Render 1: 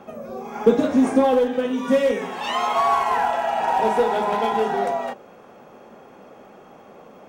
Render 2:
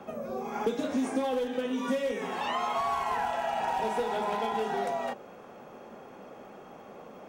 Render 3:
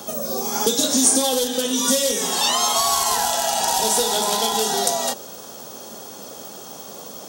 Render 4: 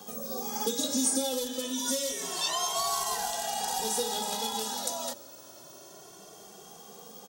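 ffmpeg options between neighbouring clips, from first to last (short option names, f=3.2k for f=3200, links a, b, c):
-filter_complex "[0:a]acrossover=split=190|2200[a][b][c];[a]acompressor=threshold=-45dB:ratio=4[d];[b]acompressor=threshold=-27dB:ratio=4[e];[c]acompressor=threshold=-42dB:ratio=4[f];[d][e][f]amix=inputs=3:normalize=0,volume=-2dB"
-af "aexciter=amount=12.4:drive=6.4:freq=3.6k,volume=7dB"
-filter_complex "[0:a]asplit=2[a][b];[b]adelay=2.1,afreqshift=0.28[c];[a][c]amix=inputs=2:normalize=1,volume=-8.5dB"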